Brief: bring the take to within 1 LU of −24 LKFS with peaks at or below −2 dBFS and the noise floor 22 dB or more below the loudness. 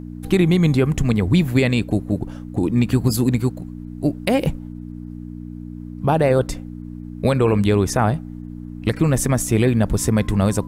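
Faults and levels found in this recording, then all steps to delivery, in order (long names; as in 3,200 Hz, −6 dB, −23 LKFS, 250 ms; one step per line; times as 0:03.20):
mains hum 60 Hz; hum harmonics up to 300 Hz; level of the hum −31 dBFS; integrated loudness −19.5 LKFS; sample peak −4.0 dBFS; target loudness −24.0 LKFS
→ hum removal 60 Hz, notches 5
level −4.5 dB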